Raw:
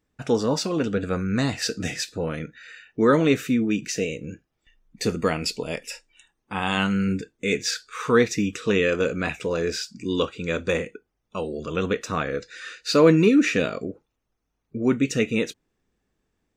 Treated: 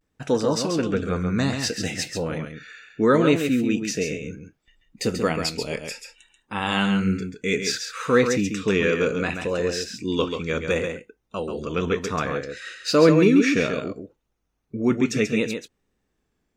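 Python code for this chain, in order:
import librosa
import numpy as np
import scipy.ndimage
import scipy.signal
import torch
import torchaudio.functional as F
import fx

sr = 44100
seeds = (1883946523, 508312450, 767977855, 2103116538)

p1 = fx.vibrato(x, sr, rate_hz=0.65, depth_cents=72.0)
y = p1 + fx.echo_single(p1, sr, ms=136, db=-6.5, dry=0)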